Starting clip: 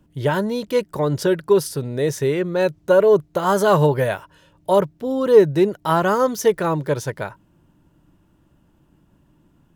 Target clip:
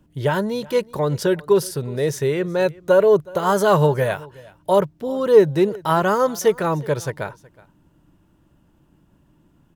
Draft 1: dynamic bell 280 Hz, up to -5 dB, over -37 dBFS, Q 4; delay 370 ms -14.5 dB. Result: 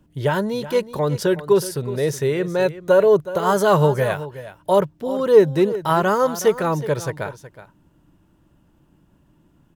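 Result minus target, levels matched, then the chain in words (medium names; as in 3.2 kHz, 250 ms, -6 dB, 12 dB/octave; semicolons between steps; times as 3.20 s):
echo-to-direct +8 dB
dynamic bell 280 Hz, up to -5 dB, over -37 dBFS, Q 4; delay 370 ms -22.5 dB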